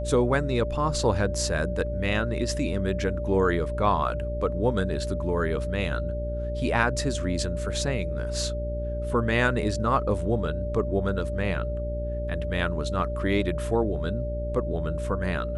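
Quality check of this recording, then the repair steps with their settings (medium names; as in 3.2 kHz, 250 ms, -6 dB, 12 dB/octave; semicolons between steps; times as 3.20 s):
buzz 60 Hz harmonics 9 -31 dBFS
whine 590 Hz -32 dBFS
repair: band-stop 590 Hz, Q 30; de-hum 60 Hz, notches 9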